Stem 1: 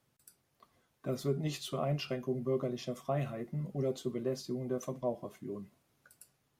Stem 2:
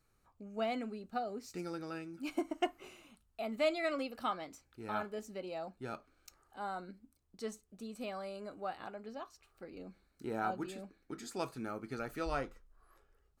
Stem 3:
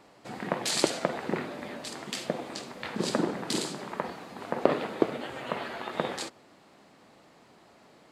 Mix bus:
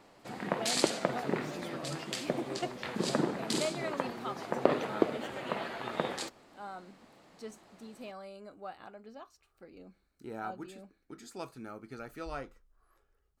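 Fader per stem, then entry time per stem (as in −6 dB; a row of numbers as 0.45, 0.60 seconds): −9.5, −3.5, −2.5 decibels; 0.00, 0.00, 0.00 seconds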